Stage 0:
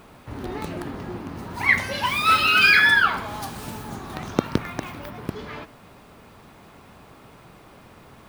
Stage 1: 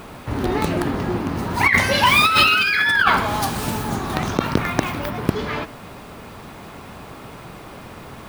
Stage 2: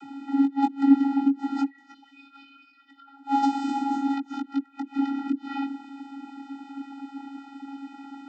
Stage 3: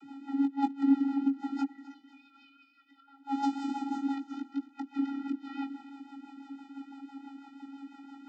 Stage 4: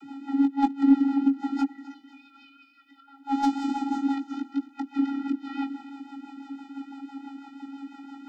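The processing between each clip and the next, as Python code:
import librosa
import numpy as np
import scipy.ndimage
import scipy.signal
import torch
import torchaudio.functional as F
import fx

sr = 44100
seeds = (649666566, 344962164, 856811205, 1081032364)

y1 = fx.over_compress(x, sr, threshold_db=-22.0, ratio=-1.0)
y1 = y1 * 10.0 ** (7.0 / 20.0)
y2 = fx.gate_flip(y1, sr, shuts_db=-9.0, range_db=-31)
y2 = fx.chorus_voices(y2, sr, voices=2, hz=0.26, base_ms=19, depth_ms=4.6, mix_pct=35)
y2 = fx.vocoder(y2, sr, bands=32, carrier='square', carrier_hz=276.0)
y2 = y2 * 10.0 ** (5.0 / 20.0)
y3 = fx.rotary(y2, sr, hz=6.0)
y3 = fx.echo_feedback(y3, sr, ms=258, feedback_pct=41, wet_db=-17.0)
y3 = y3 * 10.0 ** (-5.0 / 20.0)
y4 = fx.tracing_dist(y3, sr, depth_ms=0.025)
y4 = y4 * 10.0 ** (6.0 / 20.0)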